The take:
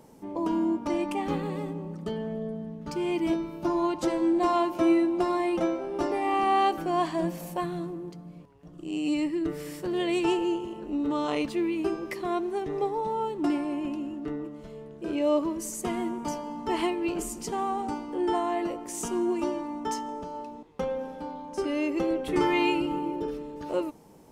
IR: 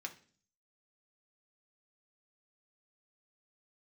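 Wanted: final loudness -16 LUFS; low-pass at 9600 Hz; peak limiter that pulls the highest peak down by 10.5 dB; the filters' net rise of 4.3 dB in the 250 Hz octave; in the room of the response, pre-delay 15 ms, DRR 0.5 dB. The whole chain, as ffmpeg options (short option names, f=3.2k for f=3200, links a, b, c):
-filter_complex "[0:a]lowpass=9.6k,equalizer=f=250:t=o:g=6.5,alimiter=limit=-21dB:level=0:latency=1,asplit=2[a][b];[1:a]atrim=start_sample=2205,adelay=15[c];[b][c]afir=irnorm=-1:irlink=0,volume=1dB[d];[a][d]amix=inputs=2:normalize=0,volume=10.5dB"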